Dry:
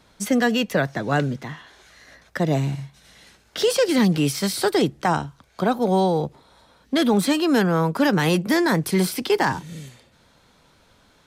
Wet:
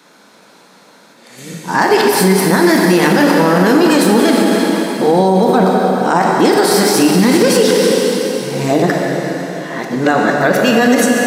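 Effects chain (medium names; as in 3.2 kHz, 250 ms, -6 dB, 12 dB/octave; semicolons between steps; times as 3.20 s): reverse the whole clip; high-pass 200 Hz 24 dB/octave; peaking EQ 3.2 kHz -5.5 dB 0.46 oct; plate-style reverb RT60 4 s, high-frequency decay 0.95×, DRR 0 dB; loudness maximiser +12.5 dB; trim -1 dB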